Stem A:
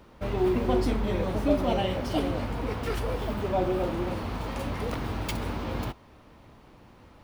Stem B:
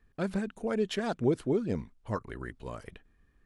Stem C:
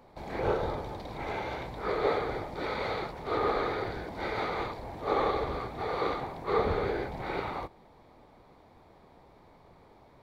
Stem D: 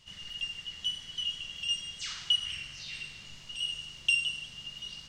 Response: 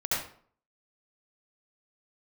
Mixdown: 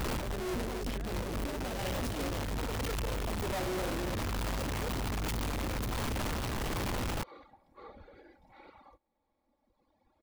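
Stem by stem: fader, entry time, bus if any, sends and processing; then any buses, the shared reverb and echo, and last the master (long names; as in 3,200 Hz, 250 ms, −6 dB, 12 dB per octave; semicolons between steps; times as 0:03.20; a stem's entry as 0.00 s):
+1.0 dB, 0.00 s, no send, sign of each sample alone; low-shelf EQ 110 Hz +11 dB; gain into a clipping stage and back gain 30.5 dB
−8.0 dB, 0.00 s, no send, soft clipping −22.5 dBFS, distortion −15 dB
−12.5 dB, 1.30 s, no send, reverb reduction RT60 2 s; comb filter 3.6 ms; downward compressor 1.5 to 1, threshold −53 dBFS, peak gain reduction 11 dB
muted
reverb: not used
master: brickwall limiter −32 dBFS, peak gain reduction 8 dB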